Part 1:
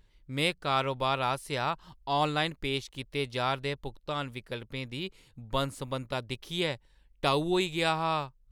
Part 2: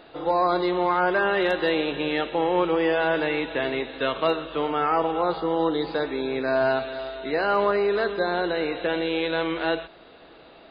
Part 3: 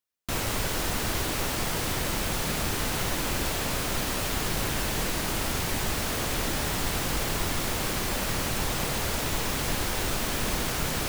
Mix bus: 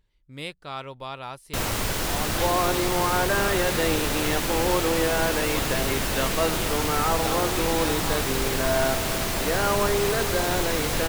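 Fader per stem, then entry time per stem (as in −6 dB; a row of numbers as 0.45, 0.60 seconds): −7.0, −2.5, +2.0 decibels; 0.00, 2.15, 1.25 seconds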